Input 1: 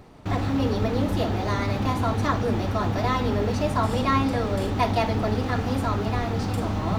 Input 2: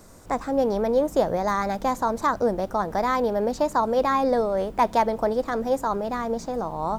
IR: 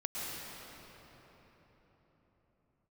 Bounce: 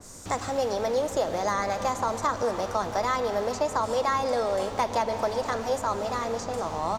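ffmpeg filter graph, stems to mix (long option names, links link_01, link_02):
-filter_complex "[0:a]volume=-8dB[link_01];[1:a]adelay=2.2,volume=-2dB,asplit=2[link_02][link_03];[link_03]volume=-13dB[link_04];[2:a]atrim=start_sample=2205[link_05];[link_04][link_05]afir=irnorm=-1:irlink=0[link_06];[link_01][link_02][link_06]amix=inputs=3:normalize=0,equalizer=frequency=6800:width_type=o:width=1.4:gain=13.5,acrossover=split=480|2600[link_07][link_08][link_09];[link_07]acompressor=threshold=-37dB:ratio=4[link_10];[link_08]acompressor=threshold=-23dB:ratio=4[link_11];[link_09]acompressor=threshold=-36dB:ratio=4[link_12];[link_10][link_11][link_12]amix=inputs=3:normalize=0,adynamicequalizer=threshold=0.00562:dfrequency=3300:dqfactor=0.7:tfrequency=3300:tqfactor=0.7:attack=5:release=100:ratio=0.375:range=2:mode=cutabove:tftype=highshelf"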